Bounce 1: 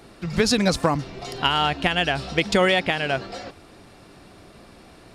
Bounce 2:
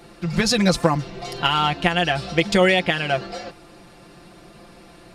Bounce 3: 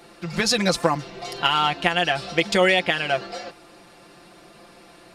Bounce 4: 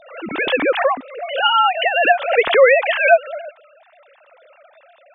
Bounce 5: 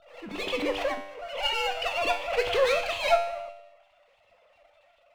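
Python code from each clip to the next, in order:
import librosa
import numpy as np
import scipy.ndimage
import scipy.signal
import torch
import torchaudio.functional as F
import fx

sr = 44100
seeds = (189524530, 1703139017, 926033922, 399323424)

y1 = x + 0.65 * np.pad(x, (int(5.8 * sr / 1000.0), 0))[:len(x)]
y2 = fx.low_shelf(y1, sr, hz=190.0, db=-12.0)
y3 = fx.sine_speech(y2, sr)
y3 = fx.pre_swell(y3, sr, db_per_s=93.0)
y3 = F.gain(torch.from_numpy(y3), 5.5).numpy()
y4 = fx.lower_of_two(y3, sr, delay_ms=0.32)
y4 = fx.comb_fb(y4, sr, f0_hz=98.0, decay_s=0.79, harmonics='all', damping=0.0, mix_pct=80)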